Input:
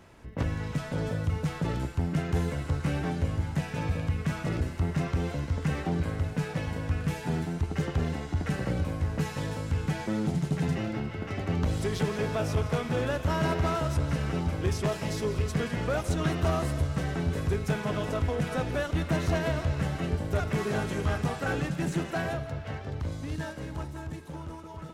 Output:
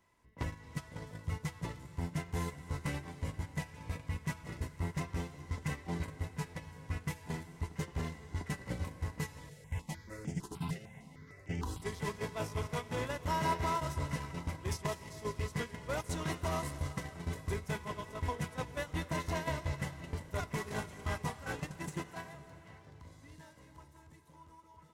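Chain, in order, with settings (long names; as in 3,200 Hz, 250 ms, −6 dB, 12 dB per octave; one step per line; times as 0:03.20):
noise gate −27 dBFS, range −16 dB
high-shelf EQ 4,200 Hz +11 dB
brickwall limiter −21.5 dBFS, peak gain reduction 6.5 dB
hollow resonant body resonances 1,000/2,000 Hz, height 16 dB, ringing for 60 ms
convolution reverb RT60 3.6 s, pre-delay 214 ms, DRR 15 dB
0:09.49–0:11.82: step-sequenced phaser 6.6 Hz 270–4,000 Hz
level −5.5 dB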